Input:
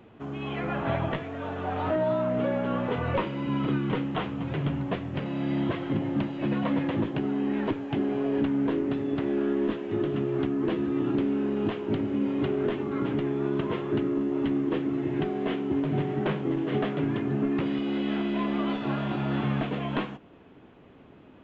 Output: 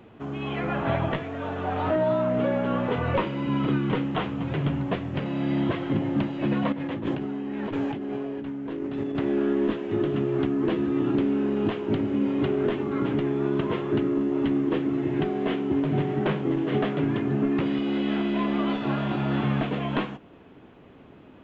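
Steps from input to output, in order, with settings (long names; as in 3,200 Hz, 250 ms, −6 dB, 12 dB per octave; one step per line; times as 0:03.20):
0:06.72–0:09.15: compressor whose output falls as the input rises −33 dBFS, ratio −1
level +2.5 dB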